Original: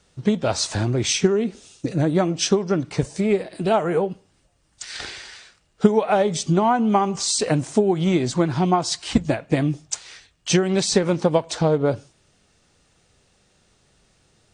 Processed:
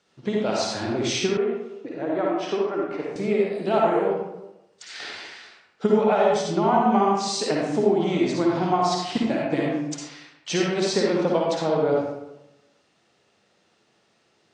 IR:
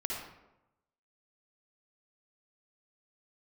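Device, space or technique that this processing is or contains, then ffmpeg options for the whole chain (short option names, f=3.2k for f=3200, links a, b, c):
supermarket ceiling speaker: -filter_complex "[0:a]highpass=230,lowpass=5.5k[a];[1:a]atrim=start_sample=2205[b];[a][b]afir=irnorm=-1:irlink=0,asettb=1/sr,asplit=3[c][d][e];[c]atrim=end=1.374[f];[d]atrim=start=1.37:end=3.16,asetpts=PTS-STARTPTS,afade=t=in:d=0.004:c=qsin,afade=t=out:st=1.786:d=0.004:c=qsin,acrossover=split=290 2700:gain=0.2 1 0.141[g][h][i];[g][h][i]amix=inputs=3:normalize=0[j];[e]atrim=start=3.156[k];[f][j]acrossfade=d=0.004:c1=hsin:c2=qsin[l];[l][k]acrossfade=d=0.004:c1=qsin:c2=hsin,volume=-3.5dB"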